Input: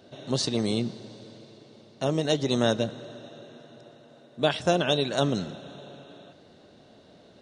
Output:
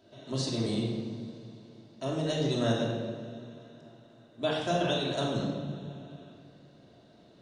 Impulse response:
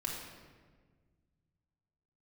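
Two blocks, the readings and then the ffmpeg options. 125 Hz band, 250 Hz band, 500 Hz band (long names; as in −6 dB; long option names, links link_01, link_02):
−1.5 dB, −3.0 dB, −4.5 dB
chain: -filter_complex "[1:a]atrim=start_sample=2205[link_01];[0:a][link_01]afir=irnorm=-1:irlink=0,volume=-7dB"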